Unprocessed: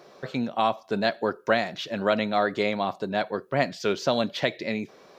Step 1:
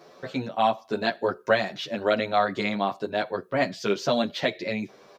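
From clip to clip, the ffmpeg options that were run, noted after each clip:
ffmpeg -i in.wav -filter_complex "[0:a]asplit=2[link_01][link_02];[link_02]adelay=9.4,afreqshift=0.93[link_03];[link_01][link_03]amix=inputs=2:normalize=1,volume=3dB" out.wav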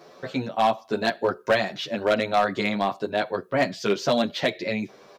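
ffmpeg -i in.wav -af "asoftclip=type=hard:threshold=-15.5dB,volume=2dB" out.wav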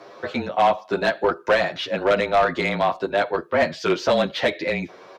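ffmpeg -i in.wav -filter_complex "[0:a]afreqshift=-28,asplit=2[link_01][link_02];[link_02]highpass=frequency=720:poles=1,volume=15dB,asoftclip=type=tanh:threshold=-7.5dB[link_03];[link_01][link_03]amix=inputs=2:normalize=0,lowpass=frequency=1800:poles=1,volume=-6dB" out.wav

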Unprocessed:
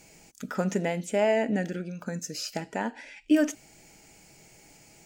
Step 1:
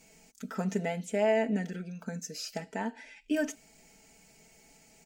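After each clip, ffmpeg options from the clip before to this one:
ffmpeg -i in.wav -af "aecho=1:1:4.5:0.72,volume=-6.5dB" out.wav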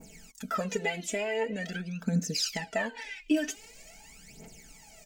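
ffmpeg -i in.wav -af "adynamicequalizer=threshold=0.00251:dfrequency=3300:dqfactor=0.89:tfrequency=3300:tqfactor=0.89:attack=5:release=100:ratio=0.375:range=3.5:mode=boostabove:tftype=bell,acompressor=threshold=-31dB:ratio=10,aphaser=in_gain=1:out_gain=1:delay=3.1:decay=0.75:speed=0.45:type=triangular,volume=3dB" out.wav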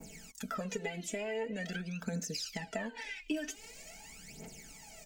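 ffmpeg -i in.wav -filter_complex "[0:a]acrossover=split=84|380[link_01][link_02][link_03];[link_01]acompressor=threshold=-58dB:ratio=4[link_04];[link_02]acompressor=threshold=-41dB:ratio=4[link_05];[link_03]acompressor=threshold=-40dB:ratio=4[link_06];[link_04][link_05][link_06]amix=inputs=3:normalize=0,volume=1dB" out.wav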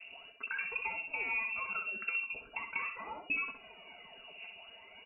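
ffmpeg -i in.wav -filter_complex "[0:a]aeval=exprs='val(0)+0.000355*sin(2*PI*530*n/s)':channel_layout=same,asplit=2[link_01][link_02];[link_02]aecho=0:1:64|128|192:0.473|0.104|0.0229[link_03];[link_01][link_03]amix=inputs=2:normalize=0,lowpass=frequency=2500:width_type=q:width=0.5098,lowpass=frequency=2500:width_type=q:width=0.6013,lowpass=frequency=2500:width_type=q:width=0.9,lowpass=frequency=2500:width_type=q:width=2.563,afreqshift=-2900" out.wav

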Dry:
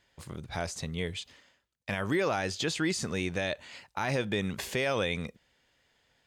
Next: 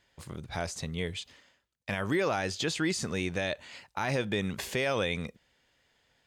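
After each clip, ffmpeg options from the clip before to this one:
ffmpeg -i in.wav -af anull out.wav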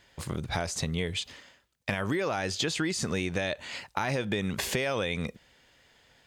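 ffmpeg -i in.wav -af "acompressor=threshold=-35dB:ratio=6,volume=8.5dB" out.wav

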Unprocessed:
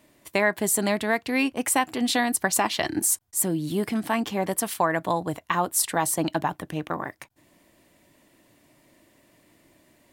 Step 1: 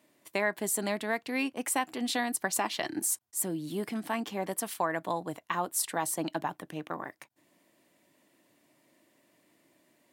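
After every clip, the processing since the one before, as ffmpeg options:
ffmpeg -i in.wav -af "highpass=170,volume=-7dB" out.wav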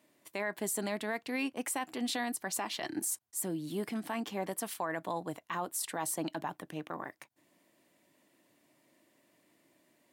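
ffmpeg -i in.wav -af "alimiter=limit=-22.5dB:level=0:latency=1:release=24,volume=-2dB" out.wav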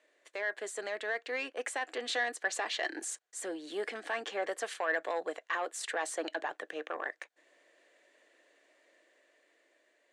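ffmpeg -i in.wav -af "asoftclip=type=tanh:threshold=-28dB,dynaudnorm=framelen=470:gausssize=7:maxgain=4.5dB,highpass=frequency=410:width=0.5412,highpass=frequency=410:width=1.3066,equalizer=frequency=480:width_type=q:width=4:gain=6,equalizer=frequency=950:width_type=q:width=4:gain=-7,equalizer=frequency=1700:width_type=q:width=4:gain=8,equalizer=frequency=5200:width_type=q:width=4:gain=-6,lowpass=frequency=7300:width=0.5412,lowpass=frequency=7300:width=1.3066" out.wav

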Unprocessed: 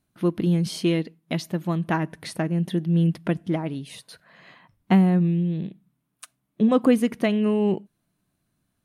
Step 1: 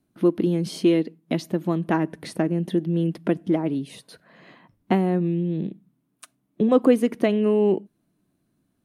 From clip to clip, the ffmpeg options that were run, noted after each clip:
ffmpeg -i in.wav -filter_complex "[0:a]equalizer=frequency=310:width_type=o:width=1.9:gain=11,acrossover=split=340|1200[link_01][link_02][link_03];[link_01]acompressor=threshold=-22dB:ratio=6[link_04];[link_04][link_02][link_03]amix=inputs=3:normalize=0,volume=-2.5dB" out.wav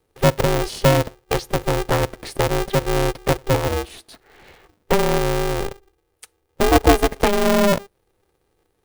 ffmpeg -i in.wav -af "equalizer=frequency=1200:width=5.2:gain=-15,aeval=exprs='val(0)*sgn(sin(2*PI*200*n/s))':channel_layout=same,volume=3.5dB" out.wav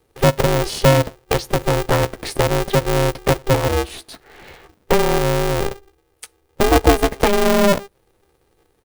ffmpeg -i in.wav -filter_complex "[0:a]asplit=2[link_01][link_02];[link_02]adelay=15,volume=-11dB[link_03];[link_01][link_03]amix=inputs=2:normalize=0,asplit=2[link_04][link_05];[link_05]acompressor=threshold=-23dB:ratio=6,volume=2dB[link_06];[link_04][link_06]amix=inputs=2:normalize=0,volume=-1.5dB" out.wav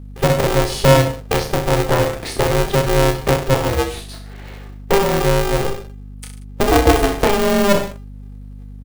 ffmpeg -i in.wav -af "aecho=1:1:30|63|99.3|139.2|183.2:0.631|0.398|0.251|0.158|0.1,aeval=exprs='val(0)+0.0251*(sin(2*PI*50*n/s)+sin(2*PI*2*50*n/s)/2+sin(2*PI*3*50*n/s)/3+sin(2*PI*4*50*n/s)/4+sin(2*PI*5*50*n/s)/5)':channel_layout=same,volume=-1dB" out.wav

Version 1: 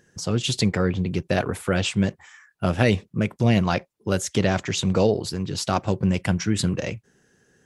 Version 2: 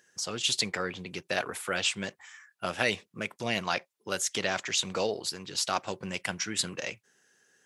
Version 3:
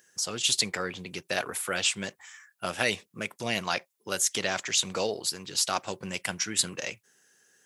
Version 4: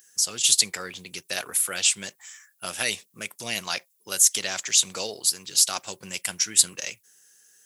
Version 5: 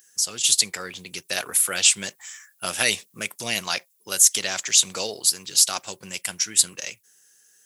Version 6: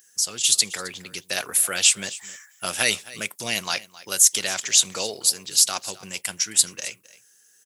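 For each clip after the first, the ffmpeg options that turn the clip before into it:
ffmpeg -i in.wav -af "highpass=frequency=1400:poles=1" out.wav
ffmpeg -i in.wav -af "highshelf=frequency=8100:gain=11.5" out.wav
ffmpeg -i in.wav -af "crystalizer=i=4.5:c=0,volume=-5.5dB" out.wav
ffmpeg -i in.wav -af "dynaudnorm=framelen=110:gausssize=17:maxgain=7dB" out.wav
ffmpeg -i in.wav -af "aecho=1:1:265:0.112" out.wav

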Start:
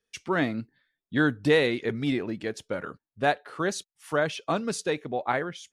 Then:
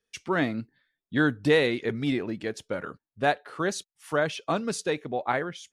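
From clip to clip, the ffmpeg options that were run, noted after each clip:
ffmpeg -i in.wav -af anull out.wav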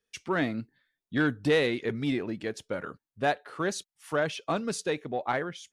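ffmpeg -i in.wav -af "asoftclip=type=tanh:threshold=-13.5dB,volume=-1.5dB" out.wav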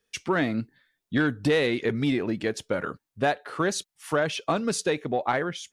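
ffmpeg -i in.wav -af "acompressor=threshold=-29dB:ratio=2.5,volume=7dB" out.wav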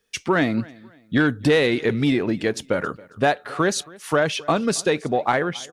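ffmpeg -i in.wav -af "aecho=1:1:273|546:0.0708|0.0234,volume=5dB" out.wav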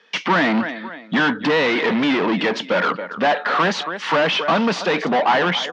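ffmpeg -i in.wav -filter_complex "[0:a]asplit=2[link_01][link_02];[link_02]highpass=frequency=720:poles=1,volume=31dB,asoftclip=type=tanh:threshold=-7dB[link_03];[link_01][link_03]amix=inputs=2:normalize=0,lowpass=frequency=2000:poles=1,volume=-6dB,highpass=frequency=180:width=0.5412,highpass=frequency=180:width=1.3066,equalizer=frequency=180:width_type=q:width=4:gain=5,equalizer=frequency=390:width_type=q:width=4:gain=-5,equalizer=frequency=960:width_type=q:width=4:gain=6,equalizer=frequency=1900:width_type=q:width=4:gain=3,equalizer=frequency=3100:width_type=q:width=4:gain=4,lowpass=frequency=5300:width=0.5412,lowpass=frequency=5300:width=1.3066,volume=-3.5dB" out.wav

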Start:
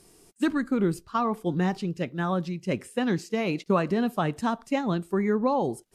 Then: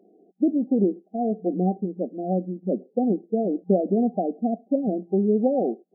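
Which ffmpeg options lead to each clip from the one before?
ffmpeg -i in.wav -af "afftfilt=real='re*between(b*sr/4096,180,790)':imag='im*between(b*sr/4096,180,790)':win_size=4096:overlap=0.75,volume=4dB" out.wav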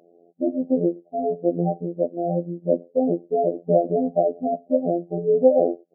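ffmpeg -i in.wav -af "lowpass=frequency=600:width_type=q:width=4.9,afftfilt=real='hypot(re,im)*cos(PI*b)':imag='0':win_size=2048:overlap=0.75" out.wav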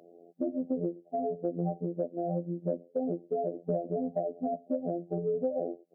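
ffmpeg -i in.wav -filter_complex "[0:a]highpass=45,acrossover=split=110[link_01][link_02];[link_02]acompressor=threshold=-30dB:ratio=5[link_03];[link_01][link_03]amix=inputs=2:normalize=0" out.wav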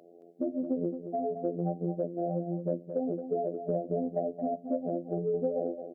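ffmpeg -i in.wav -af "bandreject=frequency=60:width_type=h:width=6,bandreject=frequency=120:width_type=h:width=6,bandreject=frequency=180:width_type=h:width=6,aecho=1:1:221:0.355" out.wav

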